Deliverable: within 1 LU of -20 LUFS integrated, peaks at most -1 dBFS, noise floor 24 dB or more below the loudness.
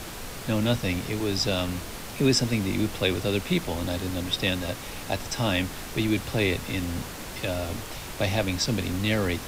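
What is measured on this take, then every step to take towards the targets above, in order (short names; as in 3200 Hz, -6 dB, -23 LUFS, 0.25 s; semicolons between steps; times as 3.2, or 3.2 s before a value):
noise floor -38 dBFS; noise floor target -52 dBFS; loudness -27.5 LUFS; peak -9.5 dBFS; loudness target -20.0 LUFS
-> noise print and reduce 14 dB; gain +7.5 dB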